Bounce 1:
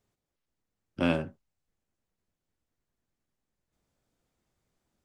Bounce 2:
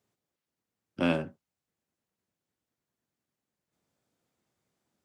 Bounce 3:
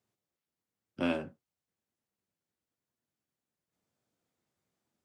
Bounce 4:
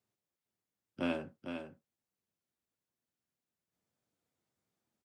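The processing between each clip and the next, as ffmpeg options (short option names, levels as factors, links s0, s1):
-af "highpass=120"
-af "flanger=delay=7.9:depth=5:regen=-62:speed=1:shape=triangular"
-af "aecho=1:1:453:0.422,volume=0.668"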